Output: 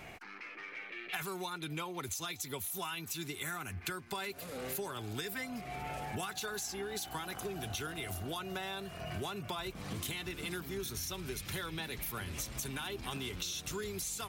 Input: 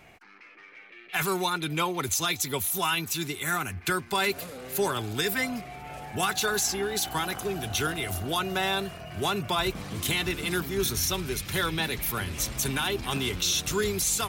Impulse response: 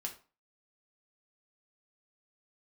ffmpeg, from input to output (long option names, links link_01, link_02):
-af "acompressor=threshold=-41dB:ratio=10,volume=4dB"